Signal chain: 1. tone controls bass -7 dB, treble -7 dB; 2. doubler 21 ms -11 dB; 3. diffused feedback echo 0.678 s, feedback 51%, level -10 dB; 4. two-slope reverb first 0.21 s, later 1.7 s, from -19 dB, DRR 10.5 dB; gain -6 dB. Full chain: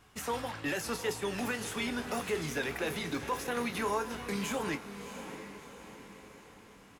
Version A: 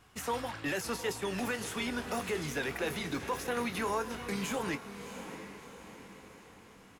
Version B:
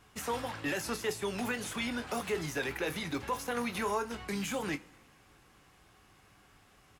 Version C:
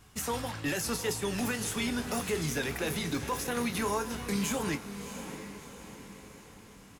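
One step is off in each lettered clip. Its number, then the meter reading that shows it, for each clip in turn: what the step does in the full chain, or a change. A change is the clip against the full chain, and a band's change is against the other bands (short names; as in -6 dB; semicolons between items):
4, echo-to-direct -6.5 dB to -8.5 dB; 3, echo-to-direct -6.5 dB to -10.5 dB; 1, 8 kHz band +4.5 dB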